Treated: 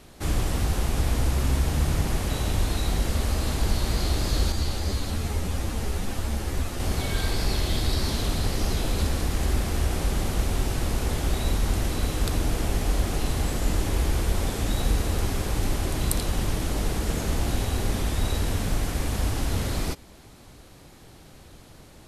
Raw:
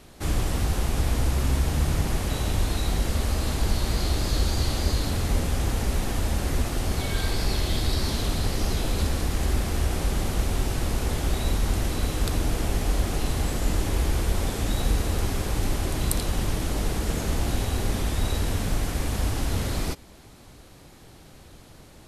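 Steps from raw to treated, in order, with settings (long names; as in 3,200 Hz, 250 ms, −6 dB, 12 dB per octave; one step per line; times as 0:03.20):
0:04.52–0:06.80: string-ensemble chorus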